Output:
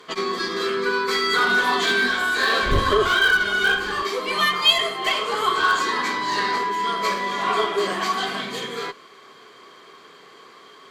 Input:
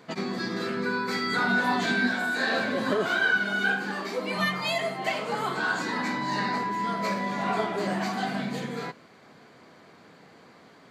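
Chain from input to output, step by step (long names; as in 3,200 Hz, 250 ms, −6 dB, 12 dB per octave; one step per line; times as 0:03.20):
0:02.62–0:04.02: wind on the microphone 83 Hz −26 dBFS
tilt shelving filter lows −8.5 dB, about 820 Hz
harmonic generator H 6 −24 dB, 8 −33 dB, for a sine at −13.5 dBFS
hollow resonant body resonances 400/1,100/3,200 Hz, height 15 dB, ringing for 35 ms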